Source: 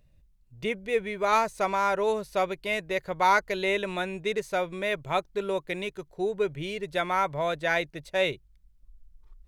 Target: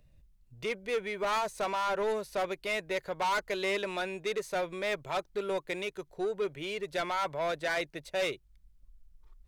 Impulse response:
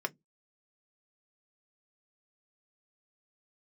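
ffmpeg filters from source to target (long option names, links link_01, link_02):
-filter_complex "[0:a]acrossover=split=280[link_01][link_02];[link_01]acompressor=threshold=-50dB:ratio=6[link_03];[link_02]asoftclip=type=tanh:threshold=-26.5dB[link_04];[link_03][link_04]amix=inputs=2:normalize=0"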